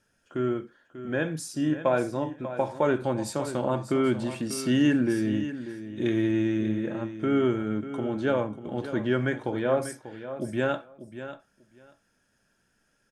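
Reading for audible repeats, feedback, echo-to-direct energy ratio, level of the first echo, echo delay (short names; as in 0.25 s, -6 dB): 2, 15%, -12.0 dB, -12.0 dB, 0.591 s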